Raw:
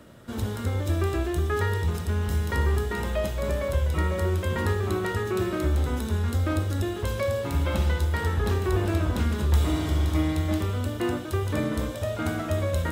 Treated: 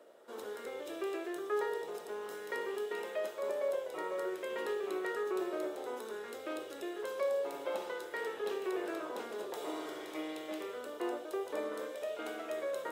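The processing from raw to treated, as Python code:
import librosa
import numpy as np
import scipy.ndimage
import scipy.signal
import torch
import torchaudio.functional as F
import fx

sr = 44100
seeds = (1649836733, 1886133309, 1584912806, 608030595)

y = fx.ladder_highpass(x, sr, hz=380.0, resonance_pct=55)
y = fx.bell_lfo(y, sr, hz=0.53, low_hz=680.0, high_hz=2900.0, db=6)
y = y * 10.0 ** (-2.5 / 20.0)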